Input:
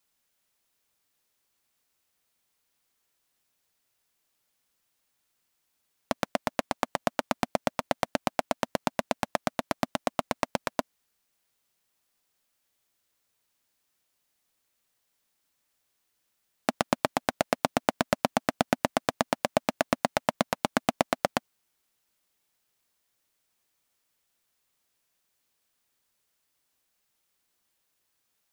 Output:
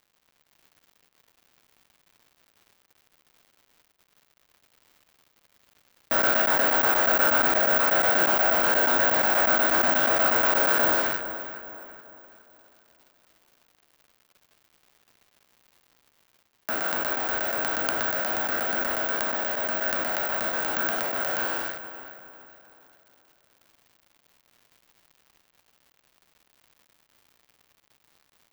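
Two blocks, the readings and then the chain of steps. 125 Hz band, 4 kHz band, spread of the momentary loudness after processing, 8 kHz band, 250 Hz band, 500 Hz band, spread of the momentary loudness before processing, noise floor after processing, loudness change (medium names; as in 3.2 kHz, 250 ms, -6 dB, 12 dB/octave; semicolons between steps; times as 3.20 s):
-5.0 dB, +3.0 dB, 11 LU, +3.5 dB, -2.5 dB, +2.5 dB, 4 LU, -70 dBFS, +8.5 dB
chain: spectral sustain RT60 1.30 s; ladder high-pass 290 Hz, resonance 40%; companded quantiser 2-bit; peaking EQ 1.5 kHz +14.5 dB 0.33 oct; crackle 260 per s -46 dBFS; level rider gain up to 4.5 dB; treble shelf 9.5 kHz -10.5 dB; on a send: filtered feedback delay 418 ms, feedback 44%, low-pass 3 kHz, level -11.5 dB; on the sum: careless resampling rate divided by 2×, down none, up zero stuff; trim -4.5 dB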